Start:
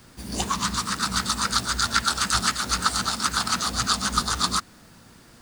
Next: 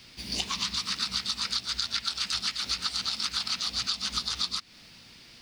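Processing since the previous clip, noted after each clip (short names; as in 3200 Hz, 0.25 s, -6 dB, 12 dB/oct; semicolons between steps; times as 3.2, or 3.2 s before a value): band shelf 3400 Hz +14 dB; compressor 6:1, threshold -20 dBFS, peak gain reduction 13.5 dB; gain -7 dB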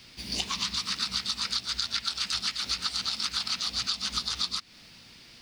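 nothing audible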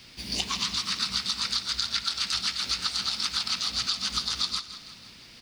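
feedback echo 0.163 s, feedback 56%, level -13 dB; gain +1.5 dB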